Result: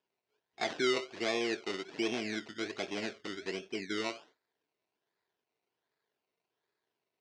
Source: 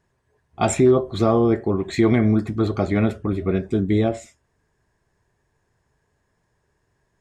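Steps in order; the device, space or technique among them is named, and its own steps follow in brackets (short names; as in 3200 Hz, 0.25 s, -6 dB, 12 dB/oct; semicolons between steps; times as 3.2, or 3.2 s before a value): circuit-bent sampling toy (decimation with a swept rate 21×, swing 60% 1.3 Hz; speaker cabinet 470–5800 Hz, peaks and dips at 560 Hz -6 dB, 840 Hz -5 dB, 1200 Hz -9 dB); gain -9 dB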